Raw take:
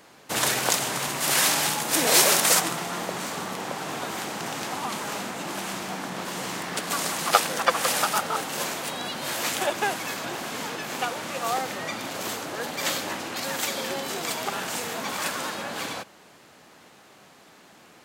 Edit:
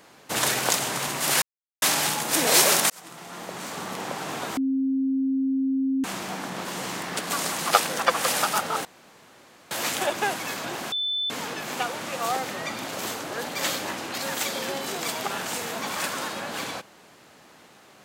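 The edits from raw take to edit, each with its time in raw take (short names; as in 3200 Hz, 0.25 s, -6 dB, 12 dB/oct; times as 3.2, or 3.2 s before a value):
1.42 insert silence 0.40 s
2.5–3.61 fade in
4.17–5.64 bleep 267 Hz -21 dBFS
8.45–9.31 room tone
10.52 add tone 3520 Hz -24 dBFS 0.38 s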